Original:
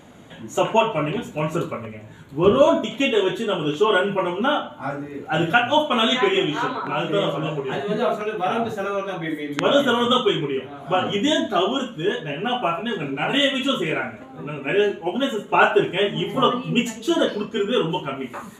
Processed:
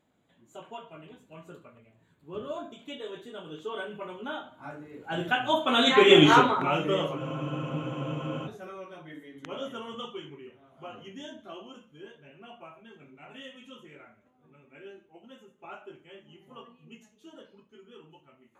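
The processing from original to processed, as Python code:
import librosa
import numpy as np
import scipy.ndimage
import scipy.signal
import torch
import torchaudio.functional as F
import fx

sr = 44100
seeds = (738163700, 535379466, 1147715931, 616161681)

y = fx.doppler_pass(x, sr, speed_mps=14, closest_m=2.0, pass_at_s=6.28)
y = fx.spec_freeze(y, sr, seeds[0], at_s=7.19, hold_s=1.27)
y = y * 10.0 ** (7.5 / 20.0)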